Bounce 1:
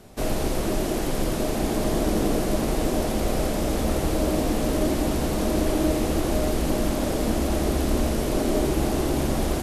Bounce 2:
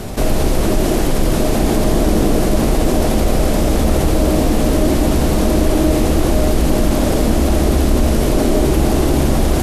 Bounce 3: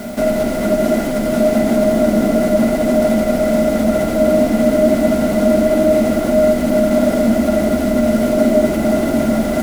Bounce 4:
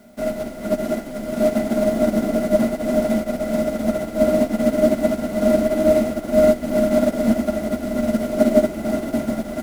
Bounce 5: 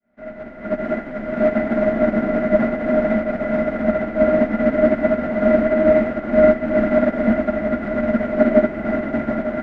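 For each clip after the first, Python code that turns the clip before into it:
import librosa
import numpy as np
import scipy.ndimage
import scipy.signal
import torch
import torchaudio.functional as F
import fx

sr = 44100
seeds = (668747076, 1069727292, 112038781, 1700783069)

y1 = fx.low_shelf(x, sr, hz=150.0, db=5.0)
y1 = fx.env_flatten(y1, sr, amount_pct=50)
y1 = y1 * librosa.db_to_amplitude(5.0)
y2 = fx.quant_dither(y1, sr, seeds[0], bits=6, dither='triangular')
y2 = fx.low_shelf(y2, sr, hz=190.0, db=-10.0)
y2 = fx.small_body(y2, sr, hz=(230.0, 620.0, 1400.0, 2000.0), ring_ms=60, db=18)
y2 = y2 * librosa.db_to_amplitude(-6.5)
y3 = y2 + 10.0 ** (-17.0 / 20.0) * np.pad(y2, (int(500 * sr / 1000.0), 0))[:len(y2)]
y3 = fx.upward_expand(y3, sr, threshold_db=-23.0, expansion=2.5)
y4 = fx.fade_in_head(y3, sr, length_s=0.98)
y4 = fx.lowpass_res(y4, sr, hz=1800.0, q=2.9)
y4 = y4 + 10.0 ** (-10.0 / 20.0) * np.pad(y4, (int(902 * sr / 1000.0), 0))[:len(y4)]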